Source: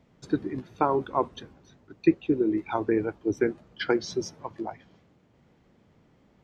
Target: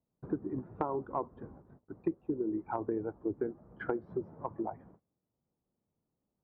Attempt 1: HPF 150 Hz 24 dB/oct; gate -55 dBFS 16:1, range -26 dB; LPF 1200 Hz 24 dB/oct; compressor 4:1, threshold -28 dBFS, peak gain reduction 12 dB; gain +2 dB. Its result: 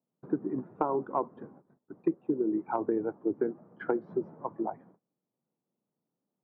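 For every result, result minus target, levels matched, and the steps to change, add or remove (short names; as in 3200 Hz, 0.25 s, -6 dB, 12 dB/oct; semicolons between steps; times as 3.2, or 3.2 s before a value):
125 Hz band -5.5 dB; compressor: peak gain reduction -5 dB
remove: HPF 150 Hz 24 dB/oct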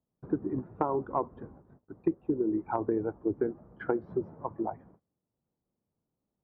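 compressor: peak gain reduction -5 dB
change: compressor 4:1, threshold -34.5 dBFS, peak gain reduction 17 dB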